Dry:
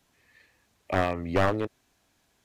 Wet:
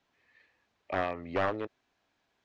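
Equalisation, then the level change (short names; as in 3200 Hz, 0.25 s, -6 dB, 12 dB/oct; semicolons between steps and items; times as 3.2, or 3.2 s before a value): air absorption 160 m; low shelf 240 Hz -11 dB; -3.0 dB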